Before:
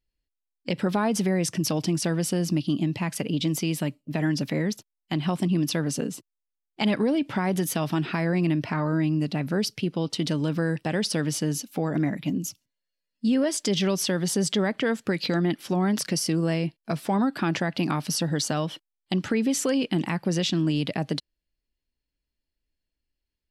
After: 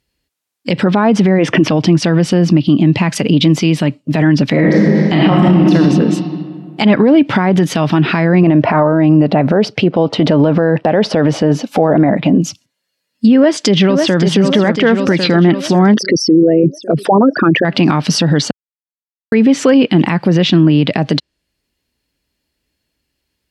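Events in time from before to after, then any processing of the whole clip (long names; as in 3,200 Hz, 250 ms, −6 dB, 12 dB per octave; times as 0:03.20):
0:01.39–0:01.69: gain on a spectral selection 250–3,600 Hz +10 dB
0:04.51–0:05.72: thrown reverb, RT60 1.9 s, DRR −4.5 dB
0:08.43–0:12.41: parametric band 650 Hz +12.5 dB 1.5 octaves
0:13.34–0:14.20: delay throw 550 ms, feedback 60%, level −6.5 dB
0:15.94–0:17.65: spectral envelope exaggerated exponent 3
0:18.51–0:19.32: silence
0:20.28–0:20.86: high-shelf EQ 6,900 Hz −8 dB
whole clip: high-pass filter 81 Hz 12 dB per octave; treble cut that deepens with the level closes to 2,400 Hz, closed at −20.5 dBFS; boost into a limiter +19 dB; level −1 dB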